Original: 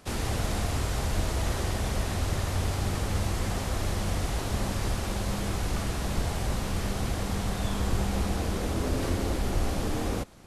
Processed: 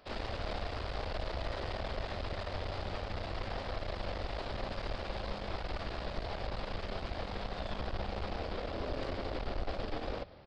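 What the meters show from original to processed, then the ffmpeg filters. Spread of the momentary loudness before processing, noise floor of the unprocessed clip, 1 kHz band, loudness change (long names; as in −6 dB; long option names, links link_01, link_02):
2 LU, −33 dBFS, −5.5 dB, −9.5 dB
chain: -filter_complex "[0:a]aresample=11025,asoftclip=type=tanh:threshold=-23dB,aresample=44100,equalizer=frequency=140:width=0.53:gain=-8.5,asplit=2[link_01][link_02];[link_02]asplit=5[link_03][link_04][link_05][link_06][link_07];[link_03]adelay=171,afreqshift=34,volume=-21dB[link_08];[link_04]adelay=342,afreqshift=68,volume=-25.4dB[link_09];[link_05]adelay=513,afreqshift=102,volume=-29.9dB[link_10];[link_06]adelay=684,afreqshift=136,volume=-34.3dB[link_11];[link_07]adelay=855,afreqshift=170,volume=-38.7dB[link_12];[link_08][link_09][link_10][link_11][link_12]amix=inputs=5:normalize=0[link_13];[link_01][link_13]amix=inputs=2:normalize=0,aeval=exprs='0.178*(cos(1*acos(clip(val(0)/0.178,-1,1)))-cos(1*PI/2))+0.0158*(cos(8*acos(clip(val(0)/0.178,-1,1)))-cos(8*PI/2))':channel_layout=same,asoftclip=type=hard:threshold=-21.5dB,equalizer=frequency=590:width=2.2:gain=6.5,volume=-5.5dB"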